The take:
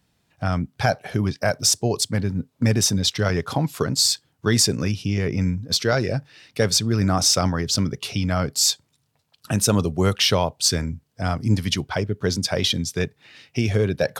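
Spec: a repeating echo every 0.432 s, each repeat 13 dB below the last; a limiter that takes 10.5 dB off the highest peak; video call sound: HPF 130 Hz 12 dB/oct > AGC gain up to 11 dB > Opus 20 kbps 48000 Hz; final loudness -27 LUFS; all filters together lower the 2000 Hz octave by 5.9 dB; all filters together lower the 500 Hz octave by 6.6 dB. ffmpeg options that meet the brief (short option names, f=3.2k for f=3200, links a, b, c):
-af "equalizer=f=500:t=o:g=-8,equalizer=f=2k:t=o:g=-7.5,alimiter=limit=-17dB:level=0:latency=1,highpass=130,aecho=1:1:432|864|1296:0.224|0.0493|0.0108,dynaudnorm=m=11dB,volume=1.5dB" -ar 48000 -c:a libopus -b:a 20k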